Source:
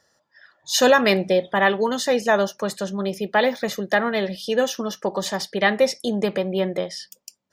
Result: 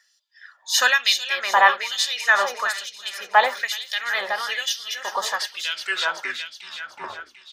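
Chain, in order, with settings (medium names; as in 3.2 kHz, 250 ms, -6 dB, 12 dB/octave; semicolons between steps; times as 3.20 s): tape stop on the ending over 2.23 s; feedback delay 372 ms, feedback 57%, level -9 dB; LFO high-pass sine 1.1 Hz 930–3600 Hz; trim +1 dB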